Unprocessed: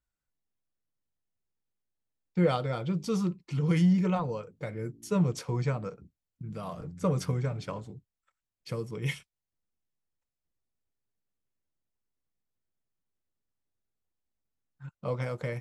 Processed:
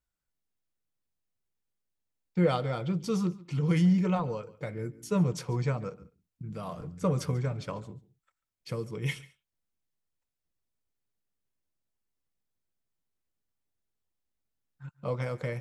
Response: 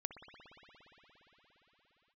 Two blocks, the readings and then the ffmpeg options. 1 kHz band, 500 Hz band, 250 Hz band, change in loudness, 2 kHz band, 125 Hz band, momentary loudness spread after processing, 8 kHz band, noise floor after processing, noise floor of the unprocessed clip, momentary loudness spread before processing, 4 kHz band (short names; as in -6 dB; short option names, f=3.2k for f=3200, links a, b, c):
0.0 dB, 0.0 dB, 0.0 dB, 0.0 dB, 0.0 dB, 0.0 dB, 15 LU, 0.0 dB, under -85 dBFS, under -85 dBFS, 15 LU, 0.0 dB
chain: -filter_complex "[0:a]asplit=2[a][b];[1:a]atrim=start_sample=2205,atrim=end_sample=4410,adelay=141[c];[b][c]afir=irnorm=-1:irlink=0,volume=-16.5dB[d];[a][d]amix=inputs=2:normalize=0"